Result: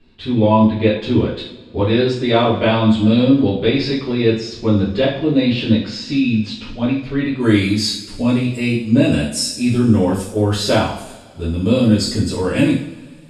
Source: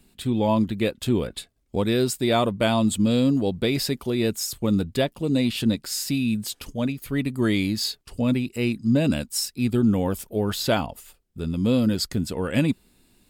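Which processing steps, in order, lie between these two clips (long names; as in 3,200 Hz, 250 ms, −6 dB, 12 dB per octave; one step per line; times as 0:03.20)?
low-pass filter 4,400 Hz 24 dB per octave, from 0:07.40 10,000 Hz
coupled-rooms reverb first 0.51 s, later 2 s, from −19 dB, DRR −8.5 dB
level −1.5 dB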